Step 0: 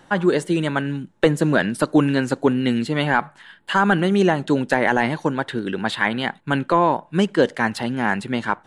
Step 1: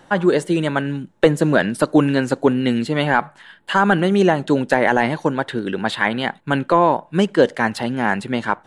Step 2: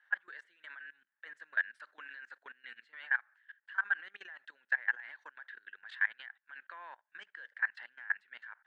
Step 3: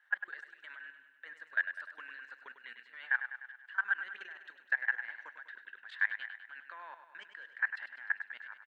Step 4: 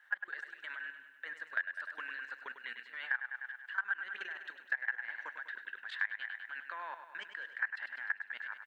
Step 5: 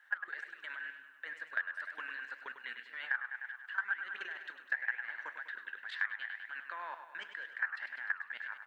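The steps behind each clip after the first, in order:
bell 580 Hz +3 dB 1 oct; gain +1 dB
ladder band-pass 1800 Hz, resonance 75%; level quantiser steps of 21 dB; gain -6 dB
feedback echo 0.1 s, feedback 58%, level -10 dB
compressor 2.5:1, threshold -41 dBFS, peak gain reduction 11.5 dB; gain +5.5 dB
flange 2 Hz, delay 5.3 ms, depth 9.3 ms, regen +83%; gain +4.5 dB

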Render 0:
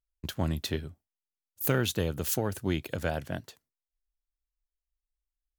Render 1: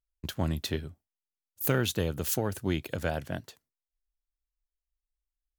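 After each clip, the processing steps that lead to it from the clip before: nothing audible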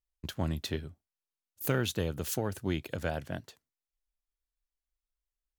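high shelf 11000 Hz -5 dB; gain -2.5 dB

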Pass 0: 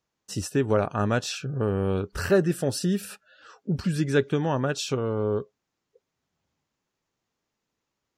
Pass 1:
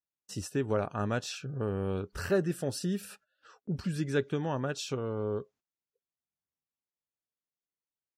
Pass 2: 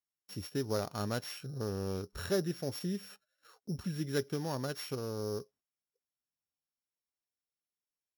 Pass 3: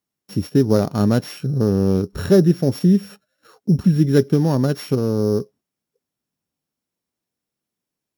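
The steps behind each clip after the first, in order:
gate -52 dBFS, range -16 dB; gain -7 dB
sample sorter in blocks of 8 samples; gain -4 dB
bell 200 Hz +14.5 dB 2.8 oct; gain +8 dB

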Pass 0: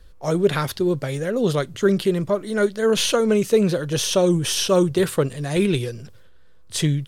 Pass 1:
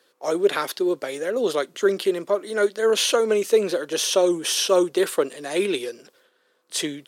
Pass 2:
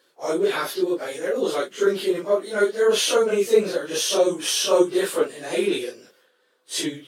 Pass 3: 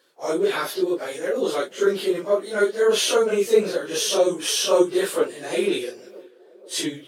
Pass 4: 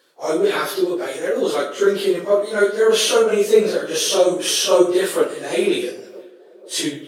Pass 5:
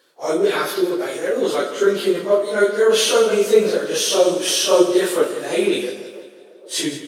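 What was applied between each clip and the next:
HPF 300 Hz 24 dB/oct
phase scrambler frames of 0.1 s
narrowing echo 0.481 s, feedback 63%, band-pass 540 Hz, level -22 dB
reverb RT60 0.55 s, pre-delay 25 ms, DRR 10 dB; gain +3.5 dB
feedback echo 0.166 s, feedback 50%, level -13 dB

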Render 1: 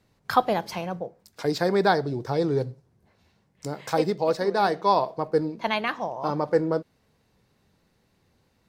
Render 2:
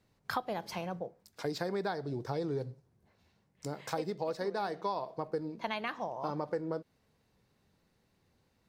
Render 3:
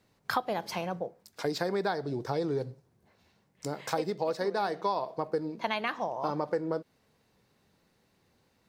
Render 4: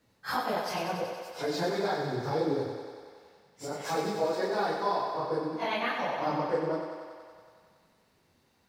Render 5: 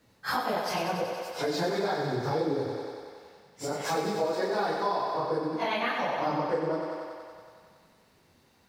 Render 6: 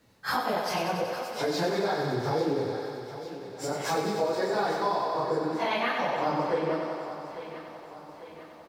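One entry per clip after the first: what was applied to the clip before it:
compressor 6:1, threshold -25 dBFS, peak gain reduction 11.5 dB; gain -6 dB
low shelf 120 Hz -8 dB; gain +5 dB
phase scrambler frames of 0.1 s; on a send: thinning echo 93 ms, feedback 77%, high-pass 240 Hz, level -6 dB
compressor 2:1, threshold -33 dBFS, peak gain reduction 5.5 dB; gain +5 dB
feedback echo 0.848 s, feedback 53%, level -13.5 dB; gain +1 dB

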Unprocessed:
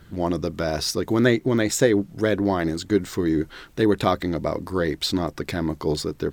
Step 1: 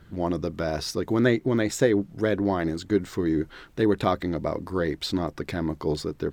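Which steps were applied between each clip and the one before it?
high shelf 4000 Hz -6.5 dB; gain -2.5 dB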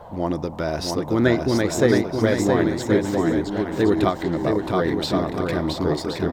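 band noise 470–1000 Hz -44 dBFS; bouncing-ball echo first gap 0.67 s, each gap 0.6×, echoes 5; ending taper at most 200 dB/s; gain +2.5 dB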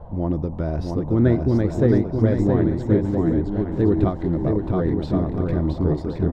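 tilt -4.5 dB/oct; gain -7.5 dB

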